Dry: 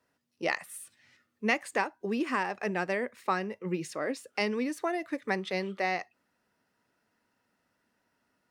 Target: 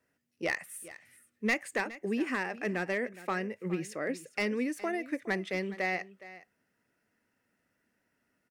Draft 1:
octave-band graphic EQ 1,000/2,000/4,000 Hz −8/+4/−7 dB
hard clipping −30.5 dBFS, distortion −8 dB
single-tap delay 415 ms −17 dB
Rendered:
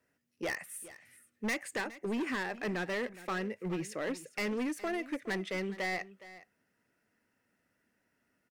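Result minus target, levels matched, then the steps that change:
hard clipping: distortion +10 dB
change: hard clipping −22.5 dBFS, distortion −19 dB

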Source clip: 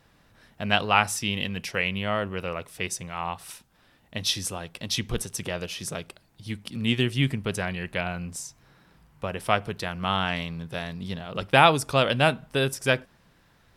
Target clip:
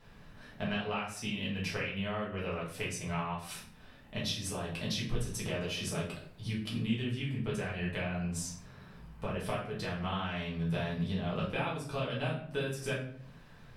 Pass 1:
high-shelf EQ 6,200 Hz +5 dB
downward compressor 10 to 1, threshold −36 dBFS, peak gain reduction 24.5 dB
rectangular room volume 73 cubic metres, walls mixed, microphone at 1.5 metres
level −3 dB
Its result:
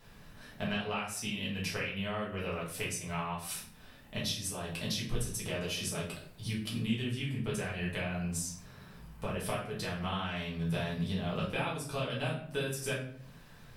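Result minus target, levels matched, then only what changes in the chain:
8,000 Hz band +3.5 dB
change: high-shelf EQ 6,200 Hz −7 dB

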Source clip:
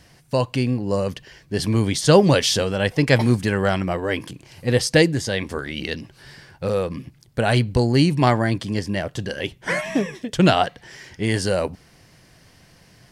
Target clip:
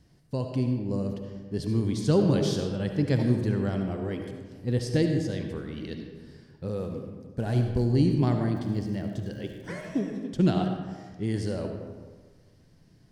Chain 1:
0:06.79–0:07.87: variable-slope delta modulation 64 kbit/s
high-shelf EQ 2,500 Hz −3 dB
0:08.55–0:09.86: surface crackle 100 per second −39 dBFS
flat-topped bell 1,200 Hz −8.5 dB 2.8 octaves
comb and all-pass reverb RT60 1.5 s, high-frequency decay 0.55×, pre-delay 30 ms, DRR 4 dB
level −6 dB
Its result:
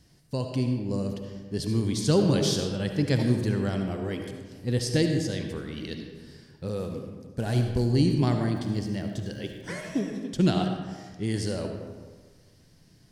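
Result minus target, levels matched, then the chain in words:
4,000 Hz band +6.0 dB
0:06.79–0:07.87: variable-slope delta modulation 64 kbit/s
high-shelf EQ 2,500 Hz −12 dB
0:08.55–0:09.86: surface crackle 100 per second −39 dBFS
flat-topped bell 1,200 Hz −8.5 dB 2.8 octaves
comb and all-pass reverb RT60 1.5 s, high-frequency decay 0.55×, pre-delay 30 ms, DRR 4 dB
level −6 dB

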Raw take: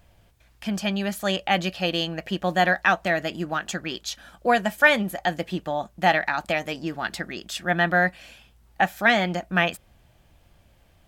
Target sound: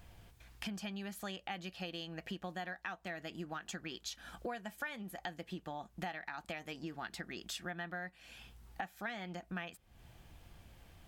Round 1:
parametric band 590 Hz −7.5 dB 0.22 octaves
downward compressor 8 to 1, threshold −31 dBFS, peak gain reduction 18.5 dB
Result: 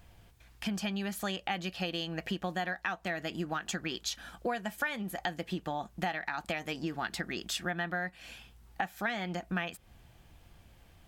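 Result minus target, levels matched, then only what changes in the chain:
downward compressor: peak gain reduction −8.5 dB
change: downward compressor 8 to 1, threshold −40.5 dBFS, peak gain reduction 27 dB

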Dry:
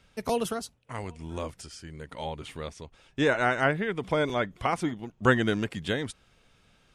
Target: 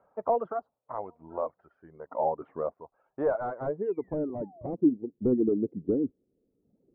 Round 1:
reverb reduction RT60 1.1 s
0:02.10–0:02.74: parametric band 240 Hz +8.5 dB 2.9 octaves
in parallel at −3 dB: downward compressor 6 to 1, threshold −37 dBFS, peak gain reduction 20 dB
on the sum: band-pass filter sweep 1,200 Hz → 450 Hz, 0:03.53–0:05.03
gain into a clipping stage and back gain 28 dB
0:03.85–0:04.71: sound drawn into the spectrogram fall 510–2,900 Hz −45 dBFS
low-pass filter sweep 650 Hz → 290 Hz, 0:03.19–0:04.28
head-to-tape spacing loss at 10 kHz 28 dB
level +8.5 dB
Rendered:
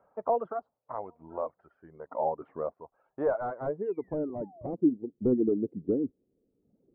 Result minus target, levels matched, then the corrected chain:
downward compressor: peak gain reduction +7.5 dB
reverb reduction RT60 1.1 s
0:02.10–0:02.74: parametric band 240 Hz +8.5 dB 2.9 octaves
in parallel at −3 dB: downward compressor 6 to 1, threshold −28 dBFS, peak gain reduction 12.5 dB
on the sum: band-pass filter sweep 1,200 Hz → 450 Hz, 0:03.53–0:05.03
gain into a clipping stage and back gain 28 dB
0:03.85–0:04.71: sound drawn into the spectrogram fall 510–2,900 Hz −45 dBFS
low-pass filter sweep 650 Hz → 290 Hz, 0:03.19–0:04.28
head-to-tape spacing loss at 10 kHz 28 dB
level +8.5 dB

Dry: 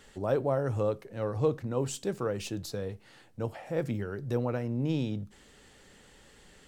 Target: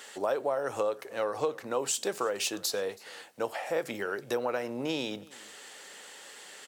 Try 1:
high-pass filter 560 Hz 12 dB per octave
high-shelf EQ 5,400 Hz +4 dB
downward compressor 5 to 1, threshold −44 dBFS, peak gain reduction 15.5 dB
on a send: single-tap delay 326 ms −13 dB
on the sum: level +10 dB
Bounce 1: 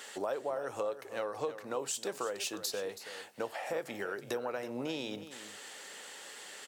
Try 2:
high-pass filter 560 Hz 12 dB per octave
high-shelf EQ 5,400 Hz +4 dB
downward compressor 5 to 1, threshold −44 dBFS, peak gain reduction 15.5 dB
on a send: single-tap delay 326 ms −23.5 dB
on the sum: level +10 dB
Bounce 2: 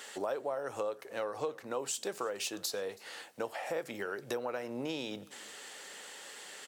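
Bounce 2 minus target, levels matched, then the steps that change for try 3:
downward compressor: peak gain reduction +6 dB
change: downward compressor 5 to 1, threshold −36.5 dBFS, peak gain reduction 9.5 dB

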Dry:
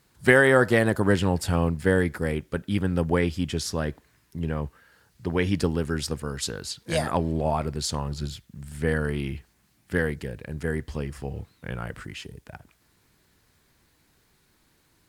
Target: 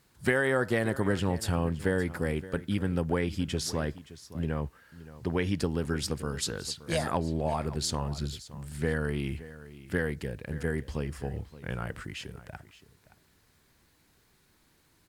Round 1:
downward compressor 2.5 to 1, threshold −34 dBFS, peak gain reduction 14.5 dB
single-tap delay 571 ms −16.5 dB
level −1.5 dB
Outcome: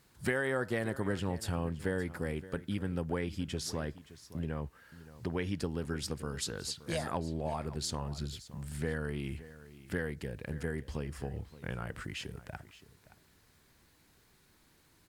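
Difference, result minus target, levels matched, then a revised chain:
downward compressor: peak gain reduction +6 dB
downward compressor 2.5 to 1, threshold −24 dBFS, peak gain reduction 8.5 dB
single-tap delay 571 ms −16.5 dB
level −1.5 dB

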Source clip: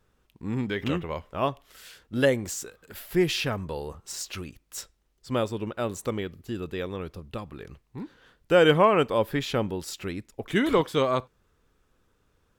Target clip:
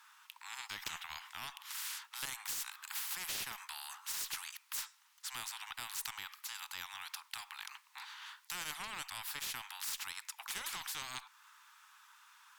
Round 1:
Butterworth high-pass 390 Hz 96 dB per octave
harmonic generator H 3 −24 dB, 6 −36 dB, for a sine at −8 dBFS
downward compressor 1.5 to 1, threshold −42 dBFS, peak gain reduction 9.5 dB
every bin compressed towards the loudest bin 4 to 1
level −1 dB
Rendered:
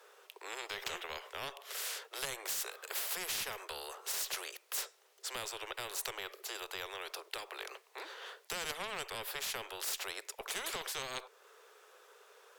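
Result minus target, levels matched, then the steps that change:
500 Hz band +15.5 dB
change: Butterworth high-pass 860 Hz 96 dB per octave

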